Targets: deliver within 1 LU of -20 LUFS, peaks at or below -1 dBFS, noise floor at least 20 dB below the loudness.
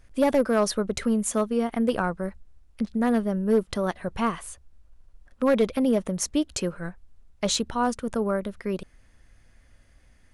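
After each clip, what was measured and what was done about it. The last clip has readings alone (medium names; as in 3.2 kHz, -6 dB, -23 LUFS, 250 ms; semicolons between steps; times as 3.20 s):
clipped samples 0.4%; clipping level -14.0 dBFS; loudness -26.0 LUFS; peak level -14.0 dBFS; loudness target -20.0 LUFS
-> clip repair -14 dBFS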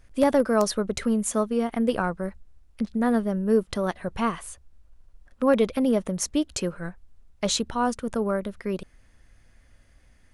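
clipped samples 0.0%; loudness -25.5 LUFS; peak level -5.5 dBFS; loudness target -20.0 LUFS
-> trim +5.5 dB; peak limiter -1 dBFS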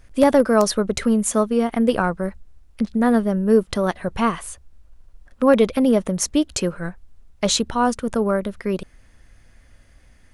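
loudness -20.0 LUFS; peak level -1.0 dBFS; noise floor -52 dBFS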